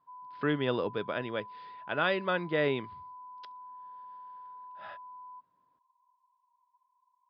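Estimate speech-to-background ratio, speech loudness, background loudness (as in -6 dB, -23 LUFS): 16.5 dB, -31.5 LUFS, -48.0 LUFS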